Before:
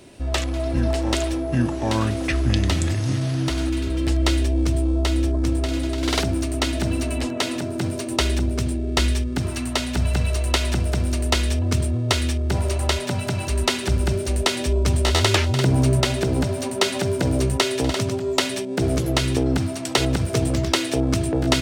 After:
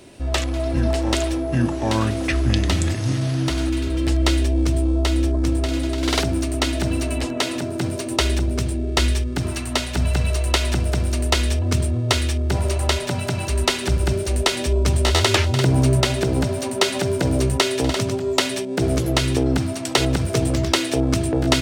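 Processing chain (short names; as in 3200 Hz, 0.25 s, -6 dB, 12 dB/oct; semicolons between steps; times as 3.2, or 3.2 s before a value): notches 50/100/150/200/250 Hz; gain +1.5 dB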